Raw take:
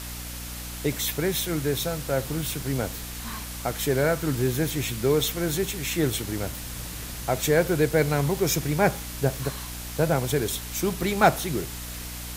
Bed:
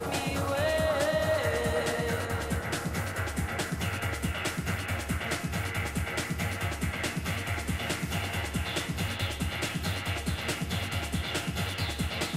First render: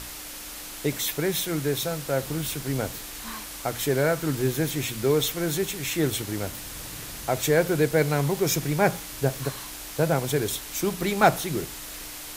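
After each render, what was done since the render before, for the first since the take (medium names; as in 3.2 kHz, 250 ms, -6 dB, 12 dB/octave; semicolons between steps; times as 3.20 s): hum notches 60/120/180/240 Hz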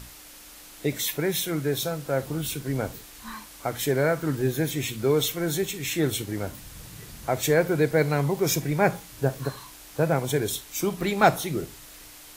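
noise print and reduce 8 dB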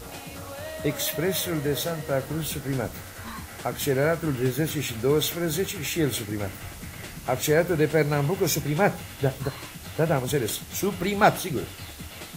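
add bed -9 dB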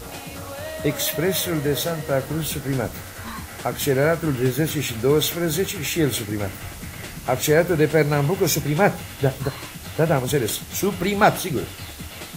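trim +4 dB; peak limiter -3 dBFS, peak gain reduction 2 dB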